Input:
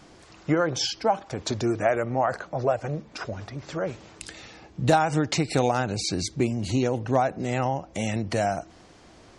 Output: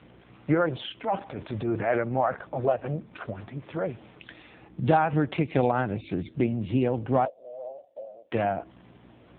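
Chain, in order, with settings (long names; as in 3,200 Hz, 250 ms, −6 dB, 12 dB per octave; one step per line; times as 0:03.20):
0:01.00–0:02.02: transient designer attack −9 dB, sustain +5 dB
mains hum 60 Hz, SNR 23 dB
0:07.25–0:08.32: flat-topped band-pass 580 Hz, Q 4.6
AMR narrowband 5.9 kbit/s 8,000 Hz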